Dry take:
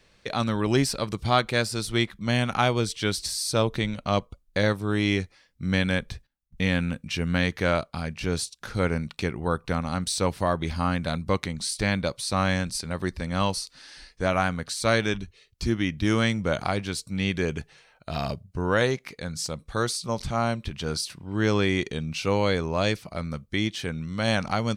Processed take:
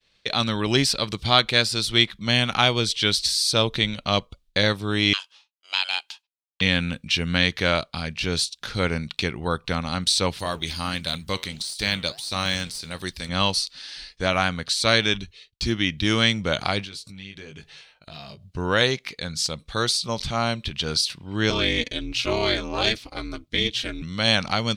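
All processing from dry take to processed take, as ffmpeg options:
-filter_complex "[0:a]asettb=1/sr,asplit=3[s0][s1][s2];[s0]atrim=end=5.134[s3];[s1]atrim=start=5.13:end=6.61,asetpts=PTS-STARTPTS,afade=t=in:d=0.004:c=qsin,afade=t=out:st=1.476:d=0.004:c=qsin,highpass=f=1300:w=0.5412,highpass=f=1300:w=1.3066,aeval=exprs='val(0)*sin(2*PI*820*n/s)':c=same[s4];[s2]atrim=start=6.606[s5];[s3][s4]acrossfade=d=0.004:c1=hsin:c2=qsin[s6];[s6][s5]acrossfade=d=0.004:c1=qsin:c2=hsin,asettb=1/sr,asplit=3[s7][s8][s9];[s7]atrim=end=10.394[s10];[s8]atrim=start=10.39:end=13.29,asetpts=PTS-STARTPTS,afade=t=in:d=0.004:c=qsin,afade=t=out:st=2.896:d=0.004:c=qsin,aemphasis=mode=production:type=75fm,deesser=0.55,flanger=delay=2.1:depth=9.6:regen=-84:speed=1.5:shape=sinusoidal[s11];[s9]atrim=start=13.286[s12];[s10][s11]acrossfade=d=0.004:c1=hsin:c2=qsin[s13];[s13][s12]acrossfade=d=0.004:c1=qsin:c2=hsin,asettb=1/sr,asplit=3[s14][s15][s16];[s14]atrim=end=16.844[s17];[s15]atrim=start=16.84:end=18.5,asetpts=PTS-STARTPTS,afade=t=in:d=0.004:c=qsin,afade=t=out:st=1.656:d=0.004:c=qsin,asplit=2[s18][s19];[s19]adelay=20,volume=0.596[s20];[s18][s20]amix=inputs=2:normalize=0,atrim=end_sample=73206,acompressor=threshold=0.01:ratio=6:attack=3.2:release=140:knee=1:detection=peak[s21];[s16]atrim=start=18.496[s22];[s17][s21]acrossfade=d=0.004:c1=hsin:c2=qsin[s23];[s23][s22]acrossfade=d=0.004:c1=qsin:c2=hsin,asettb=1/sr,asplit=3[s24][s25][s26];[s24]atrim=end=21.504[s27];[s25]atrim=start=21.5:end=24.02,asetpts=PTS-STARTPTS,afade=t=in:d=0.004:c=qsin,afade=t=out:st=2.516:d=0.004:c=qsin,aeval=exprs='if(lt(val(0),0),0.708*val(0),val(0))':c=same,aecho=1:1:5.9:0.78,atrim=end_sample=111132,aeval=exprs='val(0)*sin(2*PI*120*n/s)':c=same[s28];[s26]atrim=start=24.016[s29];[s27][s28]acrossfade=d=0.004:c1=hsin:c2=qsin[s30];[s30][s29]acrossfade=d=0.004:c1=qsin:c2=hsin,agate=range=0.0224:threshold=0.00251:ratio=3:detection=peak,equalizer=f=3600:t=o:w=1.4:g=12"

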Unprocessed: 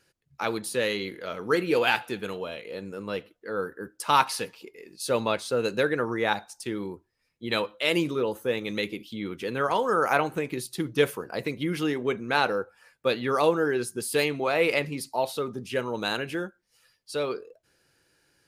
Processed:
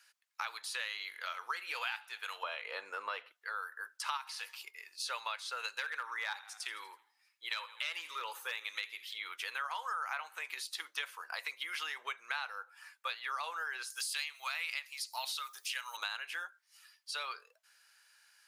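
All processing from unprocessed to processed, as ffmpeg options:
-filter_complex "[0:a]asettb=1/sr,asplit=3[s0][s1][s2];[s0]atrim=end=2.434[s3];[s1]atrim=start=2.43:end=3.32,asetpts=PTS-STARTPTS,afade=t=in:d=0.004:c=qsin,afade=t=out:st=0.886:d=0.004:c=qsin,lowpass=f=1800:p=1,equalizer=f=200:w=0.37:g=9,acontrast=84[s4];[s2]atrim=start=3.316[s5];[s3][s4]acrossfade=d=0.004:c1=hsin:c2=qsin[s6];[s6][s5]acrossfade=d=0.004:c1=qsin:c2=hsin,asettb=1/sr,asplit=3[s7][s8][s9];[s7]atrim=end=4.174[s10];[s8]atrim=start=4.17:end=4.71,asetpts=PTS-STARTPTS,afade=t=in:d=0.004:c=qsin,afade=t=out:st=0.536:d=0.004:c=qsin,highshelf=f=9000:g=6.5,acompressor=threshold=0.0316:ratio=2:attack=3.2:release=140:knee=1:detection=peak[s11];[s9]atrim=start=4.706[s12];[s10][s11]acrossfade=d=0.004:c1=hsin:c2=qsin[s13];[s13][s12]acrossfade=d=0.004:c1=qsin:c2=hsin,asettb=1/sr,asplit=3[s14][s15][s16];[s14]atrim=end=5.754[s17];[s15]atrim=start=5.75:end=9.18,asetpts=PTS-STARTPTS,afade=t=in:d=0.004:c=qsin,afade=t=out:st=3.426:d=0.004:c=qsin,asuperstop=centerf=710:order=4:qfactor=7,asplit=5[s18][s19][s20][s21][s22];[s19]adelay=81,afreqshift=-32,volume=0.1[s23];[s20]adelay=162,afreqshift=-64,volume=0.0513[s24];[s21]adelay=243,afreqshift=-96,volume=0.026[s25];[s22]adelay=324,afreqshift=-128,volume=0.0133[s26];[s18][s23][s24][s25][s26]amix=inputs=5:normalize=0,atrim=end_sample=151263,volume=7.94,asoftclip=hard,volume=0.126[s27];[s16]atrim=start=9.176[s28];[s17][s27]acrossfade=d=0.004:c1=hsin:c2=qsin[s29];[s29][s28]acrossfade=d=0.004:c1=qsin:c2=hsin,asettb=1/sr,asplit=3[s30][s31][s32];[s30]atrim=end=13.904[s33];[s31]atrim=start=13.9:end=15.97,asetpts=PTS-STARTPTS,afade=t=in:d=0.004:c=qsin,afade=t=out:st=2.066:d=0.004:c=qsin,highpass=f=990:p=1,aemphasis=mode=production:type=riaa[s34];[s32]atrim=start=15.966[s35];[s33][s34]acrossfade=d=0.004:c1=hsin:c2=qsin[s36];[s36][s35]acrossfade=d=0.004:c1=qsin:c2=hsin,acrossover=split=6300[s37][s38];[s38]acompressor=threshold=0.00316:ratio=4:attack=1:release=60[s39];[s37][s39]amix=inputs=2:normalize=0,highpass=f=1000:w=0.5412,highpass=f=1000:w=1.3066,acompressor=threshold=0.0112:ratio=6,volume=1.41"

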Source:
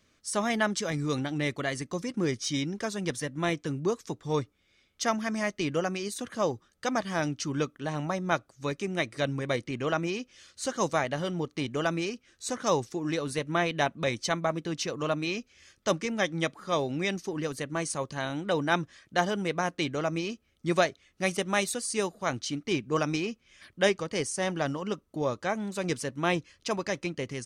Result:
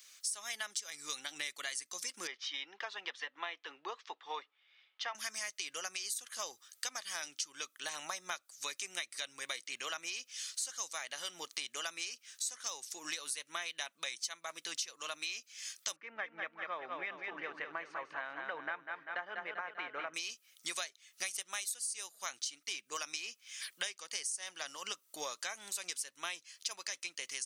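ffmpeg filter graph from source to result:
-filter_complex "[0:a]asettb=1/sr,asplit=3[s0][s1][s2];[s0]atrim=end=2.274[s3];[s1]atrim=start=2.27:end=5.15,asetpts=PTS-STARTPTS,afade=t=in:d=0.004:c=qsin,afade=t=out:st=2.876:d=0.004:c=qsin,highpass=440,equalizer=f=850:t=q:w=4:g=5,equalizer=f=1500:t=q:w=4:g=-4,equalizer=f=2300:t=q:w=4:g=-6,lowpass=f=2800:w=0.5412,lowpass=f=2800:w=1.3066,bandreject=f=590:w=9.2[s4];[s2]atrim=start=5.146[s5];[s3][s4]acrossfade=d=0.004:c1=hsin:c2=qsin[s6];[s6][s5]acrossfade=d=0.004:c1=qsin:c2=hsin,asettb=1/sr,asplit=3[s7][s8][s9];[s7]atrim=end=15.964[s10];[s8]atrim=start=15.96:end=20.14,asetpts=PTS-STARTPTS,afade=t=in:d=0.004:c=qsin,afade=t=out:st=4.176:d=0.004:c=qsin,lowpass=f=1900:w=0.5412,lowpass=f=1900:w=1.3066,aecho=1:1:196|392|588|784|980:0.473|0.218|0.1|0.0461|0.0212,atrim=end_sample=184338[s11];[s9]atrim=start=20.136[s12];[s10][s11]acrossfade=d=0.004:c1=hsin:c2=qsin[s13];[s13][s12]acrossfade=d=0.004:c1=qsin:c2=hsin,highpass=f=790:p=1,aderivative,acompressor=threshold=0.002:ratio=8,volume=7.08"

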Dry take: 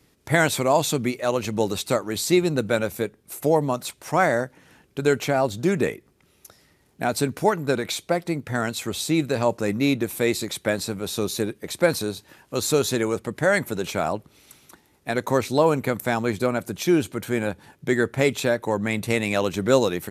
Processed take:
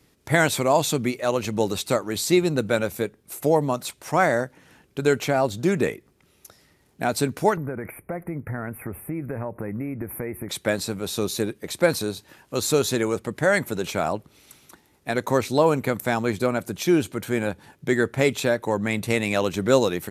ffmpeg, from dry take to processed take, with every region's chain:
-filter_complex "[0:a]asettb=1/sr,asplit=3[s0][s1][s2];[s0]atrim=end=7.574[s3];[s1]atrim=start=7.57:end=10.49,asetpts=PTS-STARTPTS,afade=t=in:d=0.004:c=qsin,afade=t=out:st=2.916:d=0.004:c=qsin,lowshelf=f=110:g=11,acompressor=threshold=0.0501:ratio=6:attack=3.2:release=140:knee=1:detection=peak,asuperstop=centerf=5000:order=12:qfactor=0.64[s4];[s2]atrim=start=10.486[s5];[s3][s4]acrossfade=d=0.004:c1=hsin:c2=qsin[s6];[s6][s5]acrossfade=d=0.004:c1=qsin:c2=hsin"

